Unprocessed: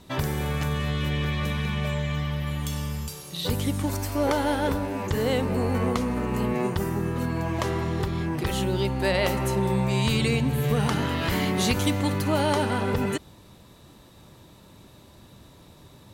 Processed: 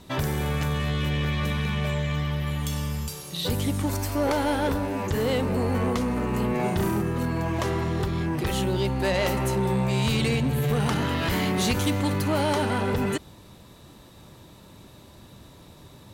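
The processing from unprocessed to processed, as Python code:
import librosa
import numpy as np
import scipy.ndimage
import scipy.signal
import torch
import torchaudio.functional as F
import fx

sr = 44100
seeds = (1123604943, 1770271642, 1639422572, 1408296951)

y = fx.room_flutter(x, sr, wall_m=5.8, rt60_s=0.6, at=(6.56, 7.02))
y = 10.0 ** (-19.5 / 20.0) * np.tanh(y / 10.0 ** (-19.5 / 20.0))
y = y * 10.0 ** (2.0 / 20.0)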